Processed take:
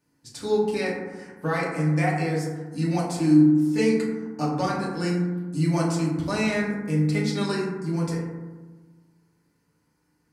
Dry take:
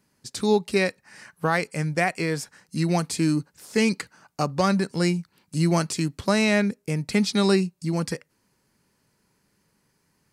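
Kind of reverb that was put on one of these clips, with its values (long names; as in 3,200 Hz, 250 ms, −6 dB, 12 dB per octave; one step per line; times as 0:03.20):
feedback delay network reverb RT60 1.3 s, low-frequency decay 1.4×, high-frequency decay 0.3×, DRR −6 dB
level −9.5 dB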